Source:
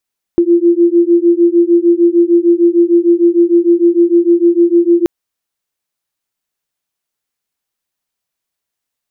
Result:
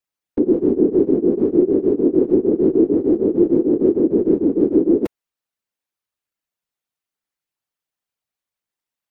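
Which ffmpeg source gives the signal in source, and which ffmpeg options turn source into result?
-f lavfi -i "aevalsrc='0.335*(sin(2*PI*340*t)+sin(2*PI*346.6*t))':d=4.68:s=44100"
-af "bass=f=250:g=0,treble=f=4000:g=-4,afftfilt=real='hypot(re,im)*cos(2*PI*random(0))':imag='hypot(re,im)*sin(2*PI*random(1))':win_size=512:overlap=0.75"

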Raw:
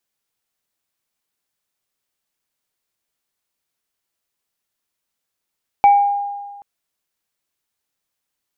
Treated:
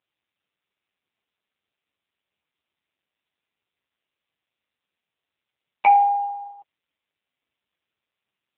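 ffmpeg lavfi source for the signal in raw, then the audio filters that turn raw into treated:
-f lavfi -i "aevalsrc='0.531*pow(10,-3*t/1.5)*sin(2*PI*809*t)+0.075*pow(10,-3*t/0.45)*sin(2*PI*2300*t)':d=0.78:s=44100"
-af "aexciter=amount=3.2:drive=1:freq=2200" -ar 8000 -c:a libopencore_amrnb -b:a 5900

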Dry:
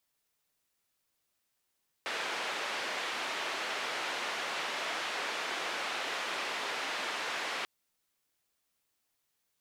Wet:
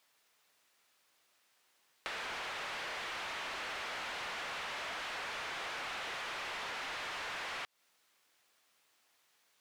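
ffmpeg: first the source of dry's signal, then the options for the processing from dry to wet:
-f lavfi -i "anoisesrc=c=white:d=5.59:r=44100:seed=1,highpass=f=420,lowpass=f=2700,volume=-21.7dB"
-filter_complex "[0:a]asplit=2[s0][s1];[s1]highpass=f=720:p=1,volume=8.91,asoftclip=type=tanh:threshold=0.0631[s2];[s0][s2]amix=inputs=2:normalize=0,lowpass=f=3300:p=1,volume=0.501,acompressor=threshold=0.01:ratio=6"

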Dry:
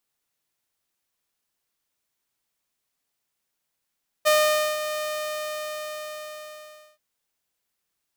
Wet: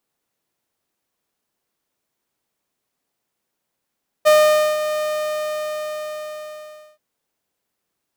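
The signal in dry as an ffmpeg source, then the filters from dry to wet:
-f lavfi -i "aevalsrc='0.224*(2*mod(610*t,1)-1)':d=2.73:s=44100,afade=t=in:d=0.023,afade=t=out:st=0.023:d=0.496:silence=0.282,afade=t=out:st=0.74:d=1.99"
-af "equalizer=f=330:w=0.3:g=9.5"

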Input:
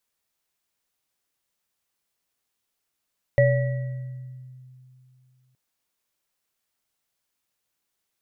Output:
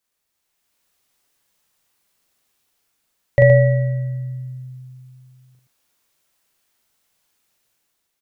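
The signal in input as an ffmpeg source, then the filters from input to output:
-f lavfi -i "aevalsrc='0.141*pow(10,-3*t/2.82)*sin(2*PI*128*t)+0.2*pow(10,-3*t/1.03)*sin(2*PI*569*t)+0.0596*pow(10,-3*t/1.14)*sin(2*PI*1940*t)':d=2.17:s=44100"
-af "aecho=1:1:40.82|119.5:0.794|0.501,dynaudnorm=f=140:g=9:m=2.51" -ar 44100 -c:a sbc -b:a 192k

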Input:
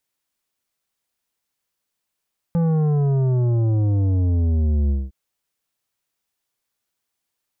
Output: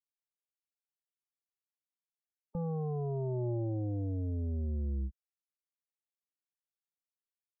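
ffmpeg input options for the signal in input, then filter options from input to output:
-f lavfi -i "aevalsrc='0.141*clip((2.56-t)/0.21,0,1)*tanh(3.16*sin(2*PI*170*2.56/log(65/170)*(exp(log(65/170)*t/2.56)-1)))/tanh(3.16)':d=2.56:s=44100"
-af "afftdn=nr=33:nf=-34,equalizer=f=120:t=o:w=1.1:g=-10.5,alimiter=level_in=1.78:limit=0.0631:level=0:latency=1:release=40,volume=0.562"

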